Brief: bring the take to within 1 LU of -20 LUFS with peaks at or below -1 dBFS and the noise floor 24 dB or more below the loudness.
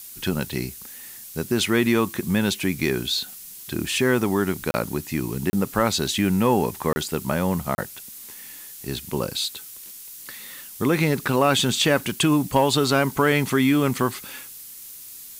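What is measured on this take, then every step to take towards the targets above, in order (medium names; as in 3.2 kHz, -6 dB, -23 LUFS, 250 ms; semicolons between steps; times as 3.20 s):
dropouts 4; longest dropout 30 ms; noise floor -41 dBFS; noise floor target -47 dBFS; loudness -22.5 LUFS; peak level -6.0 dBFS; loudness target -20.0 LUFS
-> interpolate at 4.71/5.50/6.93/7.75 s, 30 ms; noise print and reduce 6 dB; trim +2.5 dB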